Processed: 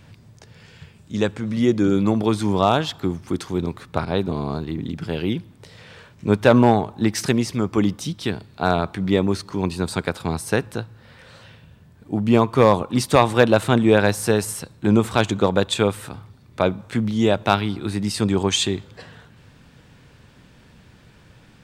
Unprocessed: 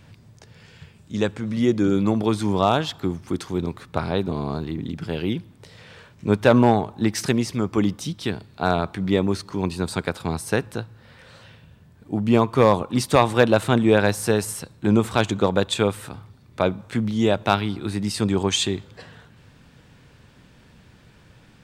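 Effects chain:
0:04.05–0:04.68: downward expander −25 dBFS
level +1.5 dB

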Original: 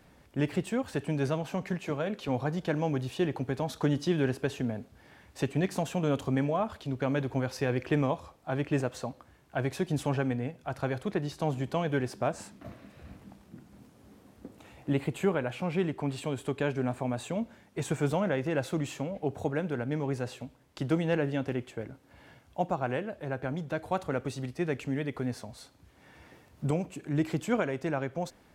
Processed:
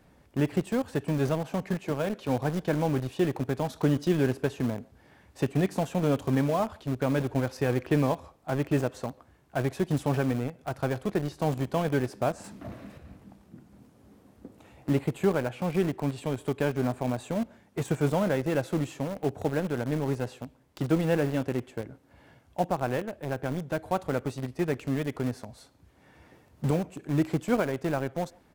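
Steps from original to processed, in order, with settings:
in parallel at −7.5 dB: bit reduction 5 bits
on the sum: high-shelf EQ 4,600 Hz +6.5 dB
far-end echo of a speakerphone 140 ms, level −27 dB
0:12.44–0:12.98: leveller curve on the samples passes 2
high-shelf EQ 2,000 Hz −8.5 dB

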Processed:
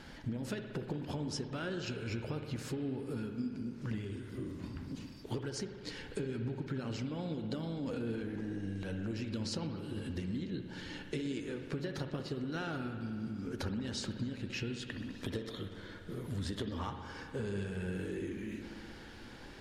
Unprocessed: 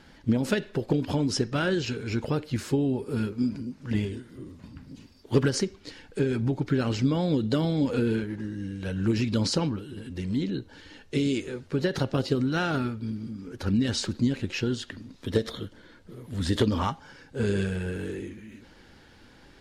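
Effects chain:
0:07.66–0:09.11: transient designer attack −11 dB, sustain +7 dB
downward compressor 10 to 1, threshold −38 dBFS, peak gain reduction 22 dB
spring reverb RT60 2.6 s, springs 60 ms, chirp 65 ms, DRR 6 dB
level +2 dB

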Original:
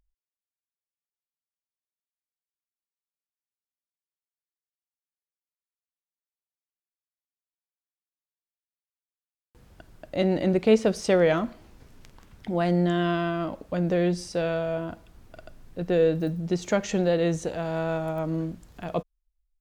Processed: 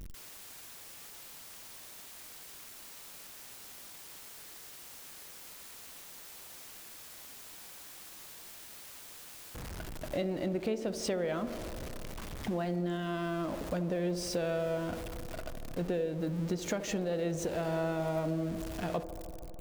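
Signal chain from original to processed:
converter with a step at zero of −35.5 dBFS
downward compressor 10 to 1, threshold −28 dBFS, peak gain reduction 15.5 dB
delay with a band-pass on its return 77 ms, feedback 84%, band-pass 480 Hz, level −12.5 dB
level −2 dB

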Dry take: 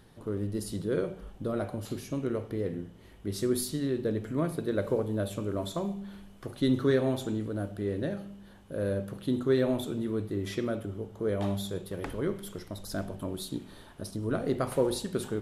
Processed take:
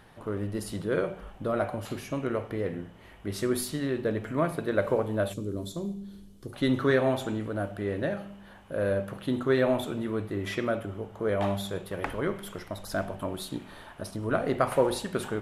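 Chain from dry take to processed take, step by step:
flat-topped bell 1,300 Hz +8 dB 2.6 octaves, from 0:05.32 −11 dB, from 0:06.52 +8 dB

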